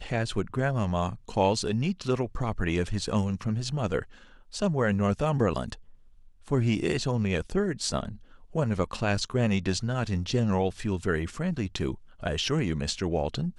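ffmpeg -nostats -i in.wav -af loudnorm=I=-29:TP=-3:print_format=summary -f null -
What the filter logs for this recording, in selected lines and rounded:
Input Integrated:    -28.8 LUFS
Input True Peak:     -11.2 dBTP
Input LRA:             1.6 LU
Input Threshold:     -39.1 LUFS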